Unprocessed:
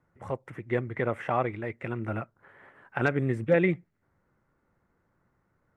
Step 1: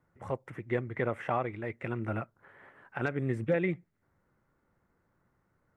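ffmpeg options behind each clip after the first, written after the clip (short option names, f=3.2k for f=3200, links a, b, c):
-af "alimiter=limit=-16.5dB:level=0:latency=1:release=356,volume=-1.5dB"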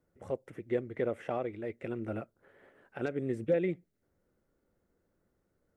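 -af "equalizer=f=125:t=o:w=1:g=-8,equalizer=f=500:t=o:w=1:g=4,equalizer=f=1k:t=o:w=1:g=-11,equalizer=f=2k:t=o:w=1:g=-6"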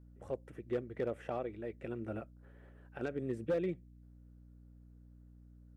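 -af "bandreject=f=2.1k:w=11,asoftclip=type=hard:threshold=-23.5dB,aeval=exprs='val(0)+0.00251*(sin(2*PI*60*n/s)+sin(2*PI*2*60*n/s)/2+sin(2*PI*3*60*n/s)/3+sin(2*PI*4*60*n/s)/4+sin(2*PI*5*60*n/s)/5)':c=same,volume=-4dB"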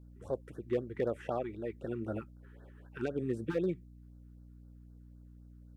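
-af "afftfilt=real='re*(1-between(b*sr/1024,550*pow(2600/550,0.5+0.5*sin(2*PI*3.9*pts/sr))/1.41,550*pow(2600/550,0.5+0.5*sin(2*PI*3.9*pts/sr))*1.41))':imag='im*(1-between(b*sr/1024,550*pow(2600/550,0.5+0.5*sin(2*PI*3.9*pts/sr))/1.41,550*pow(2600/550,0.5+0.5*sin(2*PI*3.9*pts/sr))*1.41))':win_size=1024:overlap=0.75,volume=3.5dB"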